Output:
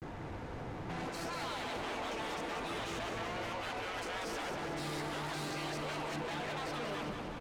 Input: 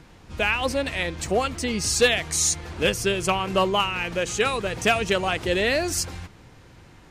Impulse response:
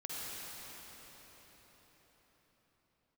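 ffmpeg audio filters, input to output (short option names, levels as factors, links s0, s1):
-filter_complex "[0:a]areverse,afftfilt=real='re*lt(hypot(re,im),0.0891)':imag='im*lt(hypot(re,im),0.0891)':win_size=1024:overlap=0.75,acrossover=split=4300[s0][s1];[s1]acompressor=threshold=0.00891:ratio=4:attack=1:release=60[s2];[s0][s2]amix=inputs=2:normalize=0,volume=47.3,asoftclip=hard,volume=0.0211,equalizer=f=640:w=0.35:g=15,acompressor=threshold=0.0355:ratio=16,bass=f=250:g=5,treble=f=4000:g=-2,flanger=delay=0.1:depth=6.3:regen=-64:speed=0.66:shape=triangular,asoftclip=type=tanh:threshold=0.0119,asplit=2[s3][s4];[s4]aecho=0:1:180|360|540|720|900|1080|1260|1440:0.501|0.296|0.174|0.103|0.0607|0.0358|0.0211|0.0125[s5];[s3][s5]amix=inputs=2:normalize=0,asetrate=42336,aresample=44100,volume=1.12"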